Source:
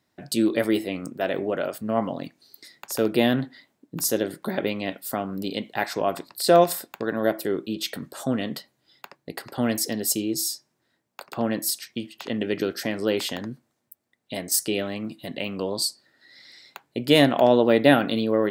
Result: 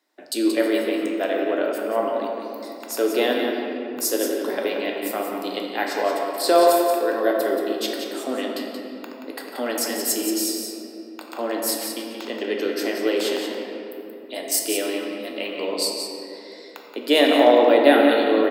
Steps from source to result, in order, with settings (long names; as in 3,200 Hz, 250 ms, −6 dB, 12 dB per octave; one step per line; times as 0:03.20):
Butterworth high-pass 280 Hz 36 dB per octave
single-tap delay 178 ms −7.5 dB
rectangular room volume 150 cubic metres, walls hard, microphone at 0.4 metres